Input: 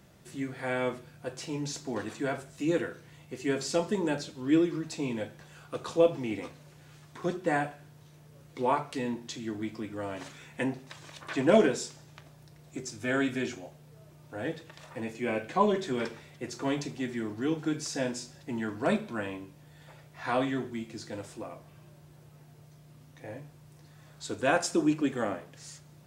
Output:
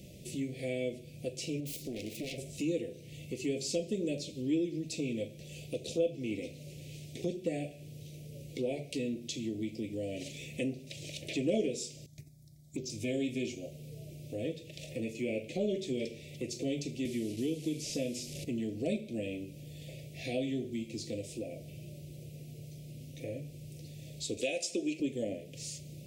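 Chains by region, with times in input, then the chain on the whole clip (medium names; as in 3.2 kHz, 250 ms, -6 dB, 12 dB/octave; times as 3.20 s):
1.60–2.38 s: self-modulated delay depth 0.8 ms + compression 2:1, threshold -41 dBFS
12.06–12.90 s: gate -52 dBFS, range -10 dB + touch-sensitive phaser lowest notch 420 Hz, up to 1.7 kHz, full sweep at -36 dBFS
17.05–18.45 s: one-bit delta coder 64 kbps, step -42.5 dBFS + three bands compressed up and down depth 40%
24.37–25.00 s: frequency weighting A + three bands compressed up and down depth 70%
whole clip: elliptic band-stop 580–2400 Hz, stop band 50 dB; compression 2:1, threshold -48 dBFS; trim +8 dB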